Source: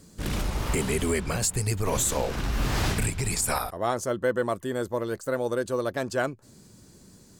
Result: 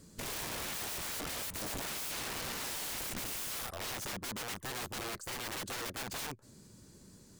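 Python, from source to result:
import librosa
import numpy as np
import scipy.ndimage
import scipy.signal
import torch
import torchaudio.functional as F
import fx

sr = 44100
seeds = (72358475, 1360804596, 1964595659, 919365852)

y = fx.notch(x, sr, hz=730.0, q=12.0)
y = (np.mod(10.0 ** (30.0 / 20.0) * y + 1.0, 2.0) - 1.0) / 10.0 ** (30.0 / 20.0)
y = F.gain(torch.from_numpy(y), -4.5).numpy()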